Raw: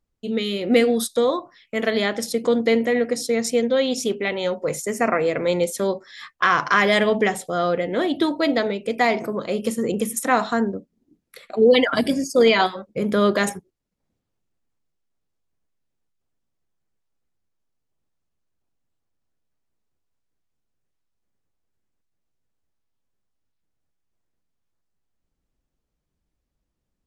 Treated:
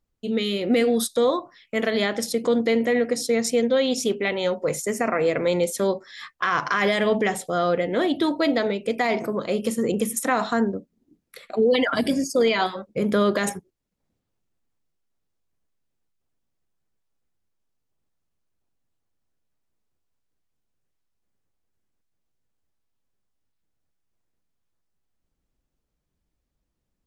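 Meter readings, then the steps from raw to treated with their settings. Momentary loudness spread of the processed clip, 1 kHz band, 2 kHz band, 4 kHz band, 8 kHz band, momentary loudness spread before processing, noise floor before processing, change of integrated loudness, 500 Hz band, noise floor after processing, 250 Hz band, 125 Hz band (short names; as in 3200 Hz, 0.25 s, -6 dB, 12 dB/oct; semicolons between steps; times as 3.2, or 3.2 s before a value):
6 LU, -3.0 dB, -3.5 dB, -2.5 dB, 0.0 dB, 9 LU, -79 dBFS, -2.0 dB, -2.0 dB, -78 dBFS, -1.0 dB, -1.0 dB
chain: limiter -12 dBFS, peak gain reduction 7 dB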